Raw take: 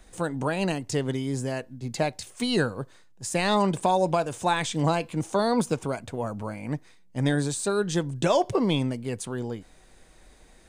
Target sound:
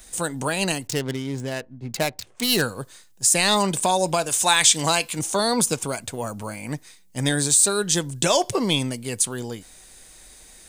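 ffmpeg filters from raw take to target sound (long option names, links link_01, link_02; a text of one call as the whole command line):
ffmpeg -i in.wav -filter_complex "[0:a]asettb=1/sr,asplit=3[link_01][link_02][link_03];[link_01]atrim=end=0.874[link_04];[link_02]atrim=start=0.87:end=2.62,asetpts=PTS-STARTPTS,afade=type=in:duration=0.004:curve=qsin,afade=type=out:start_time=1.746:duration=0.004:curve=qsin,adynamicsmooth=sensitivity=6.5:basefreq=1000[link_05];[link_03]atrim=start=2.616[link_06];[link_04][link_05]acrossfade=duration=0.004:curve1=hsin:curve2=qsin[link_07];[link_07][link_06]acrossfade=duration=0.004:curve1=qsin:curve2=hsin,crystalizer=i=5.5:c=0,asettb=1/sr,asplit=3[link_08][link_09][link_10];[link_08]atrim=end=4.294[link_11];[link_09]atrim=start=4.29:end=5.19,asetpts=PTS-STARTPTS,afade=type=in:duration=0.004:curve=qsin,afade=type=out:start_time=0.896:duration=0.004:curve=qsin,tiltshelf=frequency=650:gain=-4.5[link_12];[link_10]atrim=start=5.186[link_13];[link_11][link_12]acrossfade=duration=0.004:curve1=hsin:curve2=qsin[link_14];[link_14][link_13]acrossfade=duration=0.004:curve1=qsin:curve2=hsin" out.wav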